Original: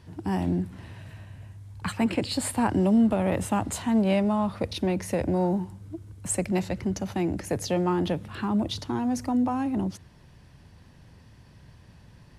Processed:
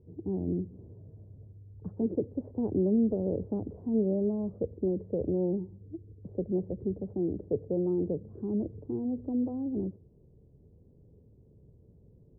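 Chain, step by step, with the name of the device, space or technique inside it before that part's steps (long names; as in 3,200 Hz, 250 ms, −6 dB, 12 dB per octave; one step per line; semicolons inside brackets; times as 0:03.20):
under water (low-pass filter 510 Hz 24 dB per octave; parametric band 430 Hz +11.5 dB 0.48 octaves)
level −6.5 dB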